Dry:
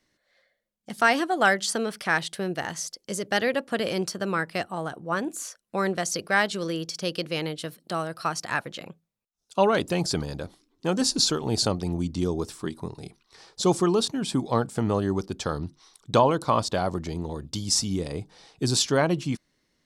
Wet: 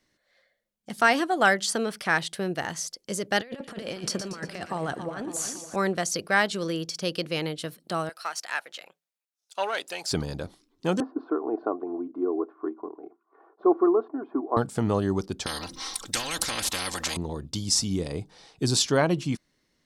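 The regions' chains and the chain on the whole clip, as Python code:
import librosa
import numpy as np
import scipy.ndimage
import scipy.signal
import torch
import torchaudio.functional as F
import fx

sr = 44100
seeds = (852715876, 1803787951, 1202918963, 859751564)

y = fx.chain(x, sr, fx.lowpass(hz=11000.0, slope=12),
    fx.over_compress(threshold_db=-32.0, ratio=-0.5),
    fx.echo_split(split_hz=2100.0, low_ms=278, high_ms=117, feedback_pct=52, wet_db=-9), at=(3.4, 5.76))
y = fx.chain(y, sr, fx.halfwave_gain(db=-3.0),
    fx.highpass(hz=810.0, slope=12),
    fx.peak_eq(hz=1100.0, db=-5.5, octaves=0.44), at=(8.09, 10.12))
y = fx.chain(y, sr, fx.ellip_bandpass(low_hz=290.0, high_hz=1300.0, order=3, stop_db=70),
    fx.air_absorb(metres=97.0),
    fx.comb(ms=2.8, depth=0.55), at=(11.0, 14.57))
y = fx.chain(y, sr, fx.comb(ms=3.8, depth=0.87),
    fx.spectral_comp(ratio=10.0), at=(15.46, 17.17))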